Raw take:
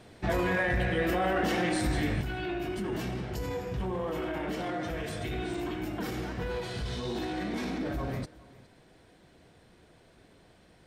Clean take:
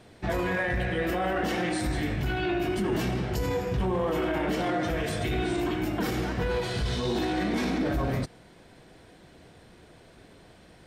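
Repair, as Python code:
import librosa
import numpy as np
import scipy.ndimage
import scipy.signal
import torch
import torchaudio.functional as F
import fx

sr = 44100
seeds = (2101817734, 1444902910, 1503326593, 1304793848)

y = fx.fix_interpolate(x, sr, at_s=(1.76, 4.18, 5.54), length_ms=2.0)
y = fx.fix_echo_inverse(y, sr, delay_ms=412, level_db=-21.5)
y = fx.fix_level(y, sr, at_s=2.21, step_db=6.0)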